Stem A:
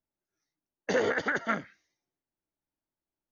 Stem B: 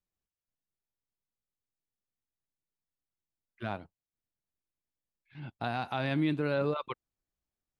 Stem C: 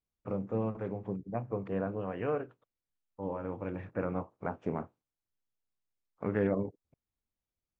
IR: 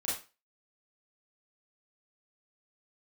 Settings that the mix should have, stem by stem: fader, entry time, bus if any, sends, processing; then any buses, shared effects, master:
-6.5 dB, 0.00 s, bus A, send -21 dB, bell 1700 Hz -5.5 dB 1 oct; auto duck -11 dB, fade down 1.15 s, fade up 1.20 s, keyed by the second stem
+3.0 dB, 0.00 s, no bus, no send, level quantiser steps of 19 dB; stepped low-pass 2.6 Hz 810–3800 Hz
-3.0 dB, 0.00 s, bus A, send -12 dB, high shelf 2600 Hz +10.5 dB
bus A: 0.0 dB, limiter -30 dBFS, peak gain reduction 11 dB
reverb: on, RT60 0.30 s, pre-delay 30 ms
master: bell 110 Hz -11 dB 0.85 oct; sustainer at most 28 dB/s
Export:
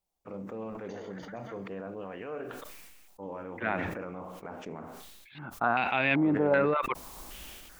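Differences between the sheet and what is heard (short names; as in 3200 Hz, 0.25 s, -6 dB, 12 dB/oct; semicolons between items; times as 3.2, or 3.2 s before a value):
stem A -6.5 dB -> -18.0 dB; stem B: missing level quantiser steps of 19 dB; stem C: send -12 dB -> -22 dB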